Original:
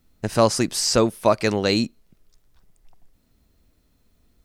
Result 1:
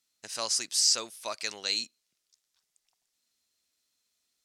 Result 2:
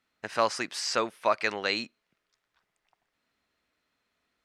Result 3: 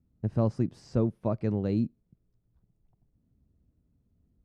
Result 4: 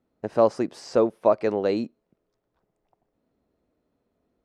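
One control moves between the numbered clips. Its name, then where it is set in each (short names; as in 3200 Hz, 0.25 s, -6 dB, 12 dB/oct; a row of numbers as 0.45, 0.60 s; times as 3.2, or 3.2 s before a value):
band-pass, frequency: 6200, 1800, 120, 520 Hz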